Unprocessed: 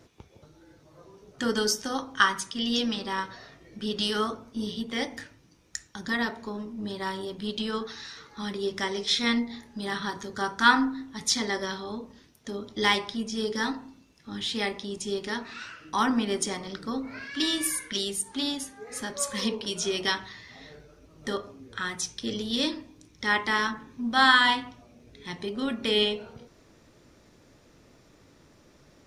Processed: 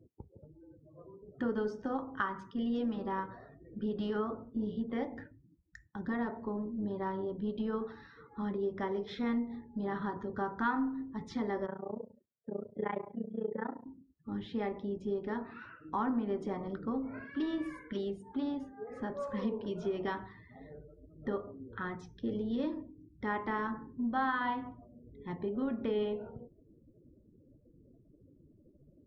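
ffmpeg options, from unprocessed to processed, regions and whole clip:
-filter_complex "[0:a]asettb=1/sr,asplit=3[a][b][c];[a]atrim=end=11.664[d];[b]atrim=start=11.66:end=13.86,asetpts=PTS-STARTPTS,afade=t=in:d=0.004:c=qsin,afade=t=out:st=2.196:d=0.004:c=qsin,tremolo=f=29:d=0.947,highpass=110,equalizer=f=270:t=q:w=4:g=-8,equalizer=f=560:t=q:w=4:g=7,equalizer=f=1.1k:t=q:w=4:g=-4,lowpass=f=2.5k:w=0.5412,lowpass=f=2.5k:w=1.3066[e];[c]atrim=start=13.856[f];[d][e]acrossfade=d=0.004:c1=hsin:c2=qsin[g];[g][f]acrossfade=d=0.004:c1=qsin:c2=hsin,afftdn=nr=33:nf=-49,lowpass=1k,acompressor=threshold=-32dB:ratio=2.5"

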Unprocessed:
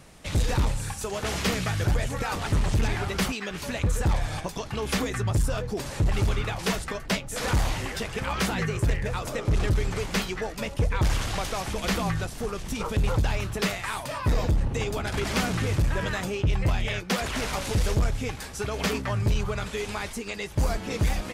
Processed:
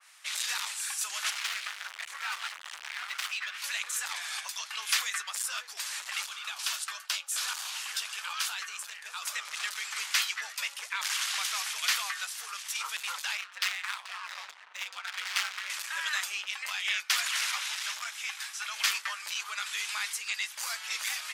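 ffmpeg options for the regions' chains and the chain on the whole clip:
-filter_complex "[0:a]asettb=1/sr,asplit=3[a][b][c];[a]atrim=end=1.304[d];[b]atrim=start=1.3:end=3.64,asetpts=PTS-STARTPTS,afade=t=in:d=0.004:c=qsin,afade=t=out:st=2.336:d=0.004:c=qsin,bass=f=250:g=7,treble=f=4k:g=-9,asoftclip=type=hard:threshold=-26dB[e];[c]atrim=start=3.636[f];[d][e]acrossfade=d=0.004:c1=hsin:c2=qsin[g];[g][f]acrossfade=d=0.004:c1=qsin:c2=hsin,asettb=1/sr,asplit=3[h][i][j];[h]atrim=end=6.254[k];[i]atrim=start=6.25:end=9.22,asetpts=PTS-STARTPTS,afade=t=in:d=0.004:c=qsin,afade=t=out:st=2.966:d=0.004:c=qsin,equalizer=f=2k:t=o:w=0.37:g=-9,acompressor=threshold=-29dB:ratio=2:attack=3.2:release=140:knee=1:detection=peak,highpass=240[l];[j]atrim=start=9.216[m];[k][l]acrossfade=d=0.004:c1=hsin:c2=qsin[n];[n][m]acrossfade=d=0.004:c1=qsin:c2=hsin,asettb=1/sr,asplit=3[o][p][q];[o]atrim=end=13.374[r];[p]atrim=start=13.37:end=15.7,asetpts=PTS-STARTPTS,afade=t=in:d=0.004:c=qsin,afade=t=out:st=2.326:d=0.004:c=qsin,adynamicsmooth=sensitivity=7:basefreq=2k,aeval=exprs='val(0)*sin(2*PI*94*n/s)':c=same[s];[q]atrim=start=15.696[t];[r][s]acrossfade=d=0.004:c1=hsin:c2=qsin[u];[u][t]acrossfade=d=0.004:c1=qsin:c2=hsin,asettb=1/sr,asplit=3[v][w][x];[v]atrim=end=17.514[y];[w]atrim=start=17.51:end=18.76,asetpts=PTS-STARTPTS,afade=t=in:d=0.004:c=qsin,afade=t=out:st=1.246:d=0.004:c=qsin,acrossover=split=5500[z][aa];[aa]acompressor=threshold=-47dB:ratio=4:attack=1:release=60[ab];[z][ab]amix=inputs=2:normalize=0,highpass=f=600:w=0.5412,highpass=f=600:w=1.3066,bandreject=f=4.5k:w=17[ac];[x]atrim=start=18.756[ad];[y][ac]acrossfade=d=0.004:c1=hsin:c2=qsin[ae];[ae][ad]acrossfade=d=0.004:c1=qsin:c2=hsin,highpass=f=1.2k:w=0.5412,highpass=f=1.2k:w=1.3066,adynamicequalizer=threshold=0.00501:dfrequency=2200:dqfactor=0.7:tfrequency=2200:tqfactor=0.7:attack=5:release=100:ratio=0.375:range=2.5:mode=boostabove:tftype=highshelf"

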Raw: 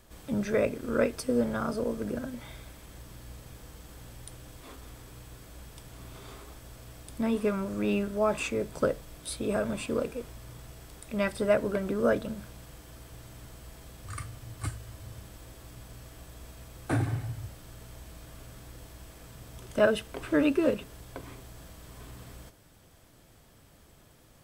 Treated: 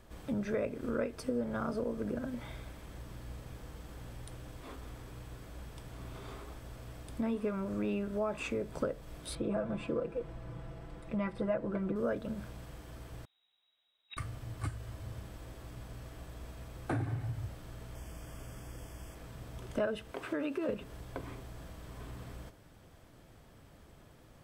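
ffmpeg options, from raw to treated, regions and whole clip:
-filter_complex "[0:a]asettb=1/sr,asplit=3[a][b][c];[a]atrim=end=9.354[d];[b]atrim=start=9.35:end=11.96,asetpts=PTS-STARTPTS,afade=t=in:d=0.004:c=qsin,afade=t=out:st=2.606:d=0.004:c=qsin,lowpass=f=1.6k:p=1,aecho=1:1:6:0.8,atrim=end_sample=115101[e];[c]atrim=start=11.956[f];[d][e]acrossfade=d=0.004:c1=hsin:c2=qsin[g];[g][f]acrossfade=d=0.004:c1=qsin:c2=hsin,asettb=1/sr,asplit=3[h][i][j];[h]atrim=end=13.254[k];[i]atrim=start=13.25:end=14.17,asetpts=PTS-STARTPTS,afade=t=in:d=0.004:c=qsin,afade=t=out:st=0.916:d=0.004:c=qsin,lowpass=f=3.3k:t=q:w=0.5098,lowpass=f=3.3k:t=q:w=0.6013,lowpass=f=3.3k:t=q:w=0.9,lowpass=f=3.3k:t=q:w=2.563,afreqshift=-3900,acompressor=mode=upward:threshold=-43dB:ratio=2.5:attack=3.2:release=140:knee=2.83:detection=peak,agate=range=-27dB:threshold=-38dB:ratio=16:release=100:detection=peak[l];[j]atrim=start=14.166[m];[k][l]acrossfade=d=0.004:c1=hsin:c2=qsin[n];[n][m]acrossfade=d=0.004:c1=qsin:c2=hsin,asettb=1/sr,asplit=3[o][p][q];[o]atrim=end=17.954[r];[p]atrim=start=17.95:end=19.15,asetpts=PTS-STARTPTS,afade=t=in:d=0.004:c=qsin,afade=t=out:st=1.196:d=0.004:c=qsin,asuperstop=centerf=4000:order=8:qfactor=4,equalizer=f=9.5k:t=o:w=1.8:g=6[s];[q]atrim=start=19.146[t];[r][s]acrossfade=d=0.004:c1=hsin:c2=qsin[u];[u][t]acrossfade=d=0.004:c1=qsin:c2=hsin,asettb=1/sr,asplit=3[v][w][x];[v]atrim=end=20.114[y];[w]atrim=start=20.11:end=20.69,asetpts=PTS-STARTPTS,afade=t=in:d=0.004:c=qsin,afade=t=out:st=0.576:d=0.004:c=qsin,highpass=f=360:p=1,acompressor=threshold=-28dB:ratio=2.5:attack=3.2:release=140:knee=1:detection=peak[z];[x]atrim=start=20.686[aa];[y][z]acrossfade=d=0.004:c1=hsin:c2=qsin[ab];[ab][aa]acrossfade=d=0.004:c1=qsin:c2=hsin,highshelf=f=3.8k:g=-10,acompressor=threshold=-34dB:ratio=3,volume=1dB"

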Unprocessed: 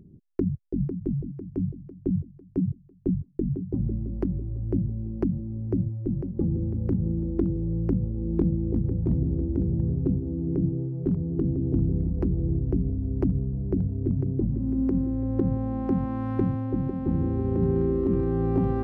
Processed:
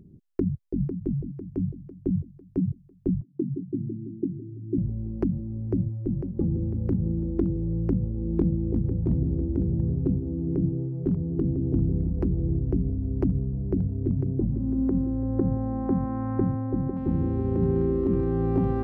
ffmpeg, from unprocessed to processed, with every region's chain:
-filter_complex "[0:a]asettb=1/sr,asplit=3[a][b][c];[a]atrim=end=3.214[d];[b]atrim=start=3.21:end=4.78,asetpts=PTS-STARTPTS,afade=t=in:d=0.004:c=qsin,afade=t=out:st=1.566:d=0.004:c=qsin,asuperpass=centerf=210:order=8:qfactor=0.83,aecho=1:1:2.8:0.41,atrim=end_sample=69237,acompressor=mode=upward:threshold=-45dB:ratio=2.5:attack=3.2:release=140:knee=2.83:detection=peak[e];[c]atrim=start=4.776[f];[d][e]acrossfade=d=0.004:c1=hsin:c2=qsin[g];[g][f]acrossfade=d=0.004:c1=qsin:c2=hsin,asettb=1/sr,asplit=3[h][i][j];[h]atrim=end=14.284[k];[i]atrim=start=14.28:end=16.97,asetpts=PTS-STARTPTS,afade=t=in:d=0.004:c=qsin,afade=t=out:st=2.686:d=0.004:c=qsin,lowpass=f=1.8k:w=0.5412,lowpass=f=1.8k:w=1.3066,equalizer=f=710:t=o:w=0.37:g=2.5[l];[j]atrim=start=16.966[m];[k][l]acrossfade=d=0.004:c1=hsin:c2=qsin[n];[n][m]acrossfade=d=0.004:c1=qsin:c2=hsin"

